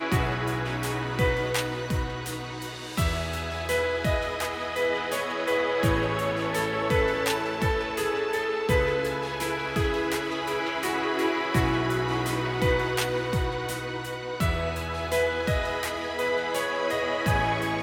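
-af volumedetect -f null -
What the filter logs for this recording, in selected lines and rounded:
mean_volume: -27.0 dB
max_volume: -10.5 dB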